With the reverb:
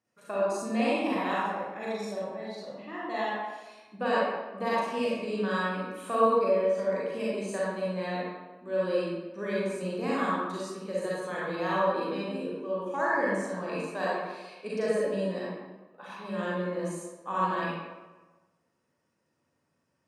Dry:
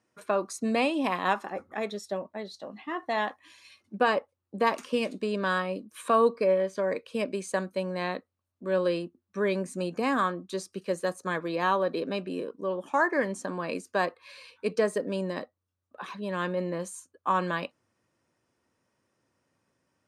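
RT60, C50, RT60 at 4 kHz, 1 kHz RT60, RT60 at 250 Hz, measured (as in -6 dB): 1.2 s, -4.5 dB, 0.75 s, 1.2 s, 1.2 s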